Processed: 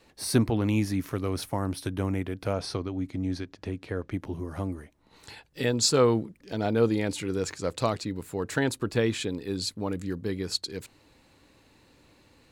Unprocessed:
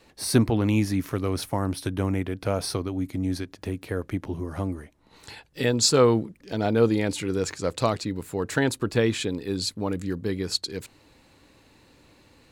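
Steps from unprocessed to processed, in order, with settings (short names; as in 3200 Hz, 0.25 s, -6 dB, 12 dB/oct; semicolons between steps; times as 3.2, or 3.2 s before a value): 2.53–4.14 LPF 6300 Hz 12 dB/oct; gain -3 dB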